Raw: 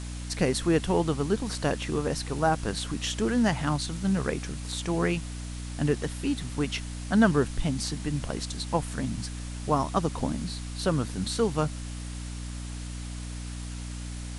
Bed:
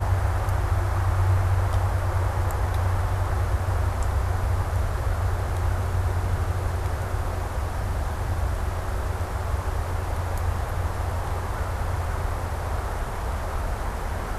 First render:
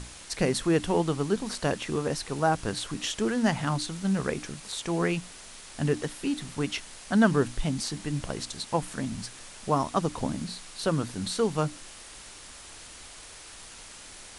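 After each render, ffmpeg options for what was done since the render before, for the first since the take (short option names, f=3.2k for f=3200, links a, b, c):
-af "bandreject=f=60:t=h:w=6,bandreject=f=120:t=h:w=6,bandreject=f=180:t=h:w=6,bandreject=f=240:t=h:w=6,bandreject=f=300:t=h:w=6"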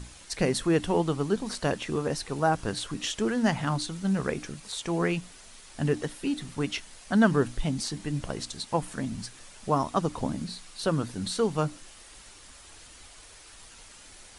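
-af "afftdn=nr=6:nf=-47"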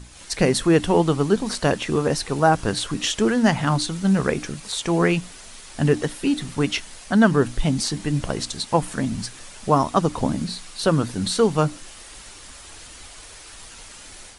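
-af "dynaudnorm=f=110:g=3:m=8dB"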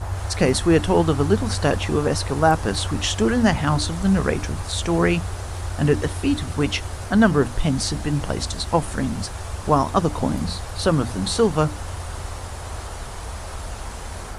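-filter_complex "[1:a]volume=-4.5dB[a];[0:a][a]amix=inputs=2:normalize=0"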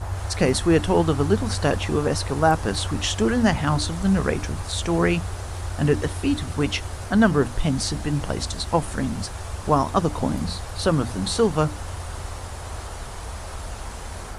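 -af "volume=-1.5dB"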